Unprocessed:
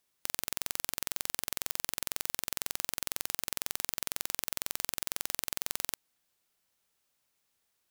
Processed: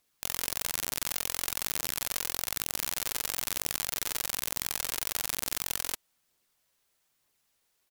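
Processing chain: phaser 1.1 Hz, delay 2.5 ms, feedback 31%; harmoniser -5 st -4 dB, +3 st -2 dB

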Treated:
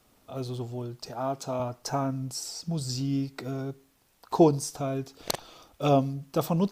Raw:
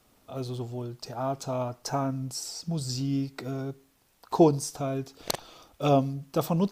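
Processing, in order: 1.09–1.6 HPF 140 Hz

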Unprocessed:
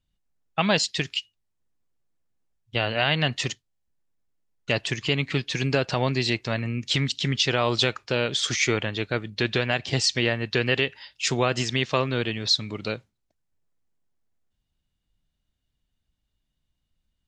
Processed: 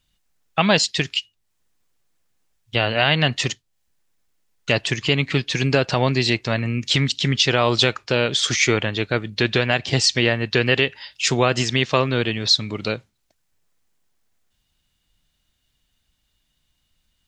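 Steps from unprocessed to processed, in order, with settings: mismatched tape noise reduction encoder only; gain +5 dB

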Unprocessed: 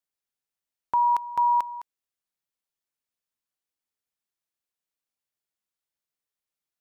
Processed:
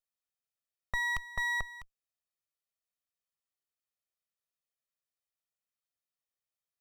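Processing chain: minimum comb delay 1.6 ms; gain -4.5 dB

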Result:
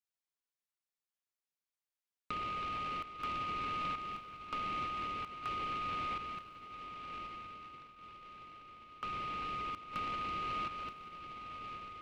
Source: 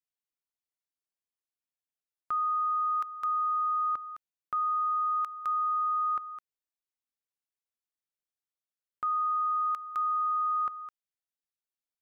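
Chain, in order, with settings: compressor 6:1, threshold -34 dBFS, peak gain reduction 6.5 dB; HPF 970 Hz 12 dB/oct; diffused feedback echo 1.056 s, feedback 47%, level -8.5 dB; noise-modulated delay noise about 1200 Hz, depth 0.056 ms; gain -2.5 dB

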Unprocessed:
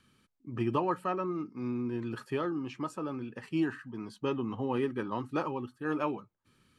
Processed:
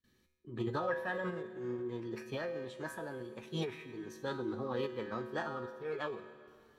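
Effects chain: gate with hold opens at -58 dBFS; low shelf 76 Hz +10.5 dB; resonator 74 Hz, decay 0.91 s, harmonics odd, mix 80%; formant shift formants +5 st; plate-style reverb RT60 2.9 s, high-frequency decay 0.95×, pre-delay 0.12 s, DRR 16.5 dB; gain +5.5 dB

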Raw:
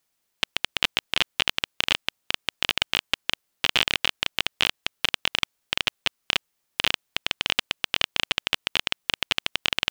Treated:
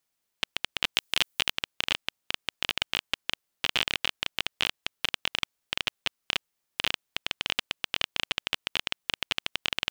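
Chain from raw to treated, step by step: 0.94–1.49 high shelf 3600 Hz -> 7400 Hz +10.5 dB; gain -5 dB

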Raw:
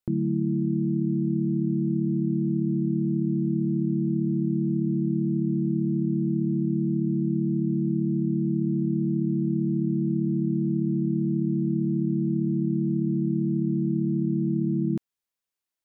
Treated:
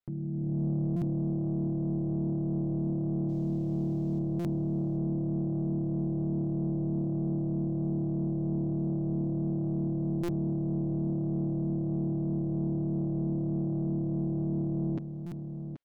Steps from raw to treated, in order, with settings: comb 7.2 ms, depth 58%; limiter -25.5 dBFS, peak gain reduction 9 dB; AGC gain up to 8 dB; soft clip -20 dBFS, distortion -18 dB; 3.28–4.18 added noise violet -48 dBFS; air absorption 160 m; echo 0.78 s -9.5 dB; stuck buffer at 0.96/4.39/10.23/15.26, samples 256, times 9; gain -3 dB

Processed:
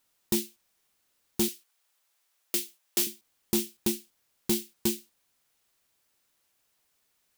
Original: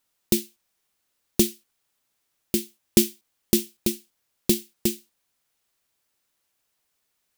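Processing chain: 1.48–3.07 HPF 570 Hz 12 dB/oct; limiter -8.5 dBFS, peak gain reduction 5.5 dB; soft clip -21.5 dBFS, distortion -9 dB; gain +2 dB

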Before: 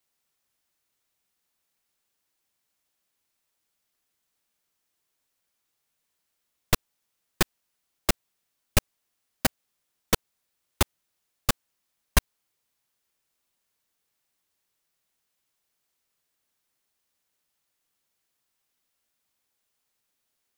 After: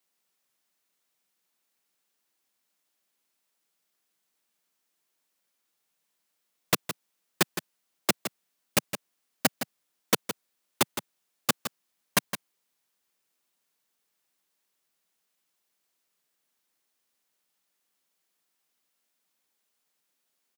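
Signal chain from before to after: HPF 150 Hz 24 dB/oct; on a send: echo 0.164 s -10 dB

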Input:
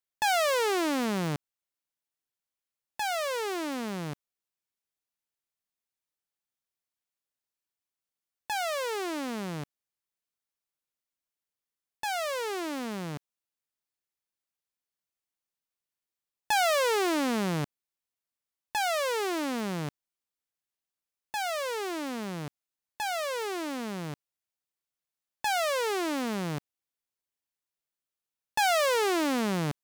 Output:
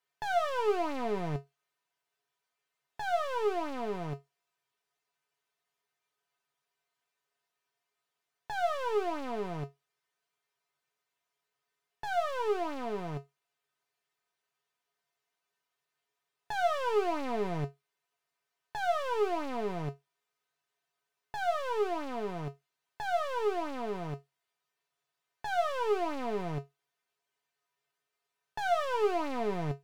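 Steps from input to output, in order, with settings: overdrive pedal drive 28 dB, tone 1300 Hz, clips at -18.5 dBFS; resonator 140 Hz, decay 0.17 s, harmonics odd, mix 90%; gain +5 dB

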